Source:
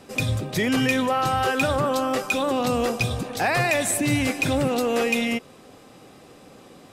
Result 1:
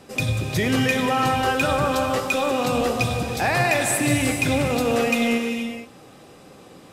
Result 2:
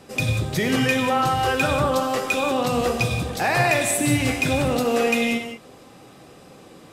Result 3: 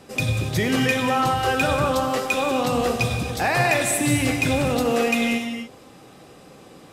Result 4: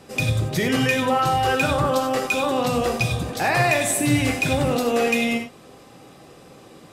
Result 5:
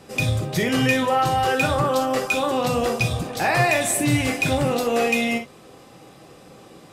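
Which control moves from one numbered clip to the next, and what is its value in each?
reverb whose tail is shaped and stops, gate: 500, 210, 310, 120, 80 milliseconds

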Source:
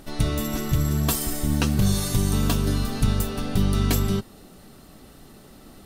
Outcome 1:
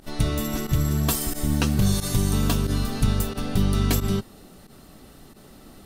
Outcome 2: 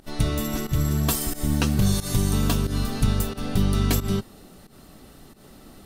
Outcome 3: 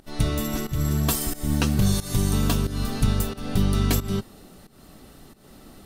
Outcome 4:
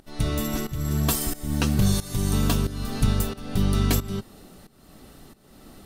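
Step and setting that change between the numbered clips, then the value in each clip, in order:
fake sidechain pumping, release: 64, 136, 246, 464 milliseconds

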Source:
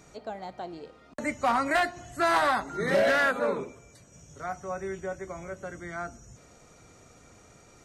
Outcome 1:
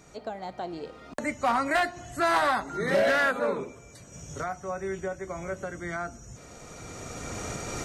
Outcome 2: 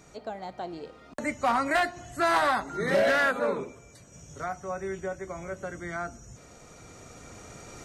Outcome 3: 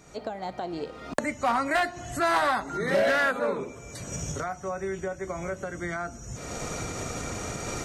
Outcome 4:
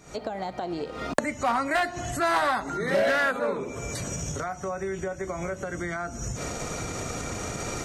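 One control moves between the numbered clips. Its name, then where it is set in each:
camcorder AGC, rising by: 13, 5.1, 36, 90 dB per second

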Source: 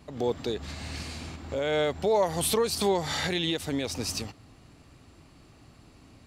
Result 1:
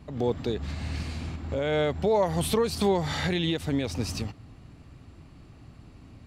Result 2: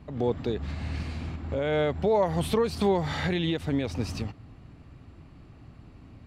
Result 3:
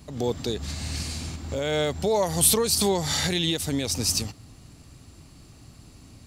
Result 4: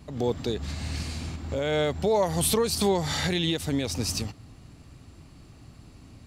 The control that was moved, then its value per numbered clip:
bass and treble, treble: −6, −14, +11, +3 decibels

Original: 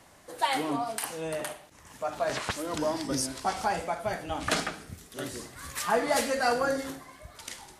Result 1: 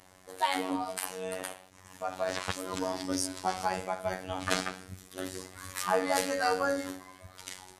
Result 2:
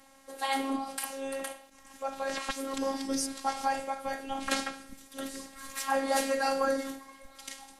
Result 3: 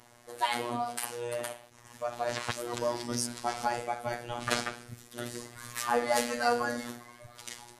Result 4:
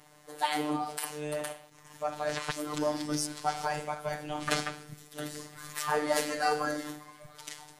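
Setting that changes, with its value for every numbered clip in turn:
phases set to zero, frequency: 93, 270, 120, 150 Hertz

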